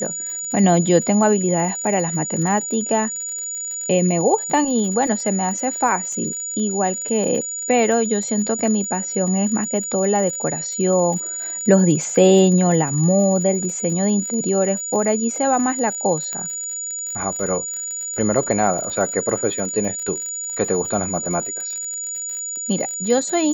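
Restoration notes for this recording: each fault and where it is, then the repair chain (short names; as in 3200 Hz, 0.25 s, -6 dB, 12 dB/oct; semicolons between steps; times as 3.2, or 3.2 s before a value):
crackle 60/s -28 dBFS
tone 6900 Hz -25 dBFS
16.33 pop -13 dBFS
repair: de-click; notch 6900 Hz, Q 30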